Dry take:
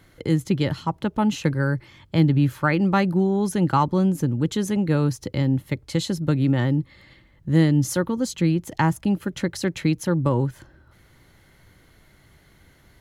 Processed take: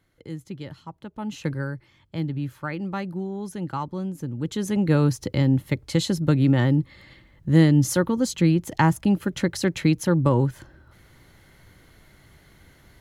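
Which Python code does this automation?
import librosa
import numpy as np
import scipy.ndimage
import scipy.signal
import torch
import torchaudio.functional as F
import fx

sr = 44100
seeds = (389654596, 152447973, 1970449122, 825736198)

y = fx.gain(x, sr, db=fx.line((1.11, -14.0), (1.53, -4.0), (1.76, -10.0), (4.17, -10.0), (4.88, 1.5)))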